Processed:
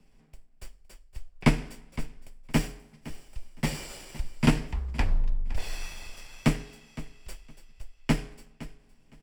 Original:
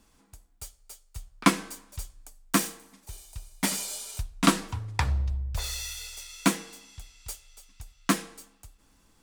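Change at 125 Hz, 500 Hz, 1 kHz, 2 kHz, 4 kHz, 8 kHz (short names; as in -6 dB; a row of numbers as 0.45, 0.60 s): +3.0, 0.0, -7.0, -3.0, -6.0, -11.0 dB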